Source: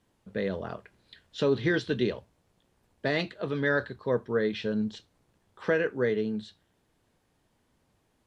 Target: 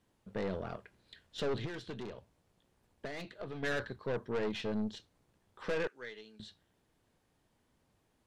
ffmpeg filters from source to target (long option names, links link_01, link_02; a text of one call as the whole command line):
ffmpeg -i in.wav -filter_complex "[0:a]asettb=1/sr,asplit=3[link_01][link_02][link_03];[link_01]atrim=end=5.874[link_04];[link_02]atrim=start=5.87:end=6.4,asetpts=PTS-STARTPTS,afade=type=in:duration=0.004:curve=qsin,afade=type=out:start_time=0.526:duration=0.004:curve=qsin,bandpass=frequency=6300:width_type=q:width=0.59:csg=0[link_05];[link_03]atrim=start=6.396[link_06];[link_04][link_05]acrossfade=duration=0.004:curve1=hsin:curve2=qsin[link_07];[link_07][link_06]acrossfade=duration=0.004:curve1=qsin:curve2=hsin,aeval=exprs='(tanh(28.2*val(0)+0.5)-tanh(0.5))/28.2':channel_layout=same,asettb=1/sr,asplit=3[link_08][link_09][link_10];[link_08]atrim=end=1.654[link_11];[link_09]atrim=start=1.65:end=3.63,asetpts=PTS-STARTPTS,afade=type=in:duration=0.004:curve=qsin,afade=type=out:start_time=1.976:duration=0.004:curve=qsin,acompressor=threshold=-38dB:ratio=6[link_12];[link_10]atrim=start=3.626[link_13];[link_11][link_12]acrossfade=duration=0.004:curve1=hsin:curve2=qsin[link_14];[link_14][link_13]acrossfade=duration=0.004:curve1=qsin:curve2=hsin,volume=-1.5dB" out.wav